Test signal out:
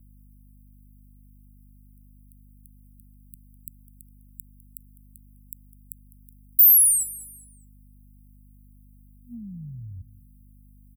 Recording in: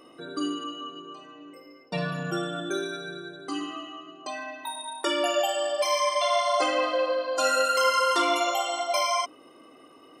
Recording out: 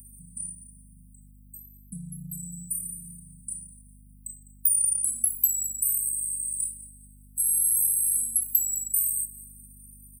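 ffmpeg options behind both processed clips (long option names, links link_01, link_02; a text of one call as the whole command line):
ffmpeg -i in.wav -filter_complex "[0:a]afftfilt=real='re*(1-between(b*sr/4096,240,7700))':imag='im*(1-between(b*sr/4096,240,7700))':win_size=4096:overlap=0.75,equalizer=frequency=2800:width_type=o:width=0.21:gain=12.5,acrossover=split=120[link_01][link_02];[link_02]acompressor=threshold=-32dB:ratio=1.5[link_03];[link_01][link_03]amix=inputs=2:normalize=0,acrossover=split=660[link_04][link_05];[link_05]alimiter=level_in=12dB:limit=-24dB:level=0:latency=1:release=39,volume=-12dB[link_06];[link_04][link_06]amix=inputs=2:normalize=0,acompressor=threshold=-37dB:ratio=6,aexciter=amount=10.4:drive=9.1:freq=8500,aeval=exprs='val(0)+0.00282*(sin(2*PI*50*n/s)+sin(2*PI*2*50*n/s)/2+sin(2*PI*3*50*n/s)/3+sin(2*PI*4*50*n/s)/4+sin(2*PI*5*50*n/s)/5)':channel_layout=same,asplit=2[link_07][link_08];[link_08]aecho=0:1:204|408|612:0.119|0.0404|0.0137[link_09];[link_07][link_09]amix=inputs=2:normalize=0" out.wav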